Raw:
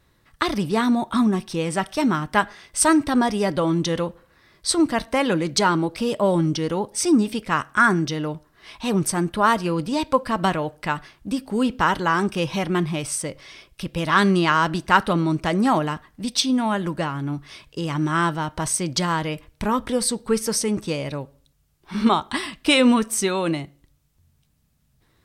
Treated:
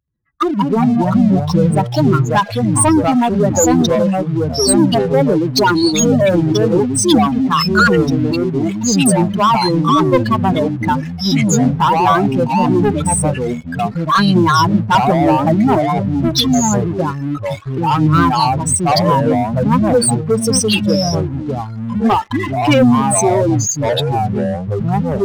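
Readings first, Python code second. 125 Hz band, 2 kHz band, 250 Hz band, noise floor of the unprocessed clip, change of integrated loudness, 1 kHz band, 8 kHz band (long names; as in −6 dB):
+12.5 dB, +2.5 dB, +8.5 dB, −63 dBFS, +8.0 dB, +8.5 dB, +9.0 dB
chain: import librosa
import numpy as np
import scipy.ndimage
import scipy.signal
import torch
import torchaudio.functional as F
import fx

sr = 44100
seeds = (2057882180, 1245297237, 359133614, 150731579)

y = fx.spec_expand(x, sr, power=3.2)
y = fx.highpass(y, sr, hz=220.0, slope=6)
y = fx.leveller(y, sr, passes=3)
y = fx.echo_pitch(y, sr, ms=80, semitones=-4, count=3, db_per_echo=-3.0)
y = y * 10.0 ** (-1.0 / 20.0)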